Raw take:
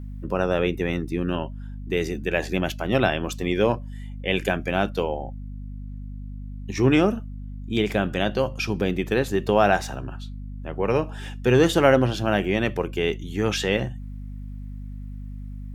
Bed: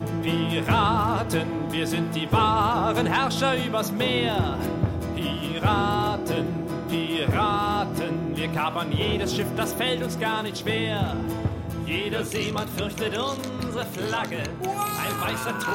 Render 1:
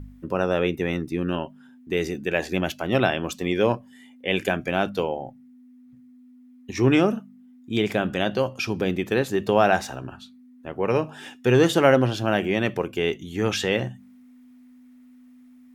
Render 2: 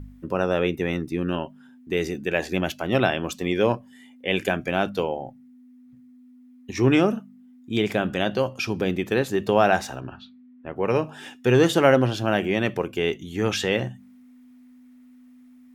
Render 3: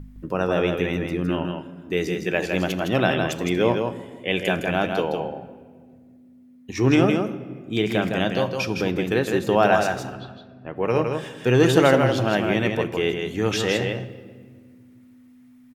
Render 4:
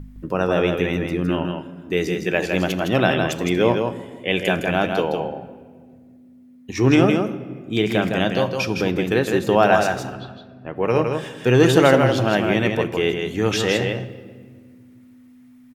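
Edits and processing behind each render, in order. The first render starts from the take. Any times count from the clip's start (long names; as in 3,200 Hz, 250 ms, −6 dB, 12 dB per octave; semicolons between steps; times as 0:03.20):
hum removal 50 Hz, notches 4
0:10.00–0:10.75: low-pass filter 5,600 Hz → 2,500 Hz 24 dB per octave
on a send: single-tap delay 161 ms −5 dB; on the sum: rectangular room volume 2,700 cubic metres, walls mixed, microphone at 0.53 metres
level +2.5 dB; brickwall limiter −2 dBFS, peak gain reduction 1.5 dB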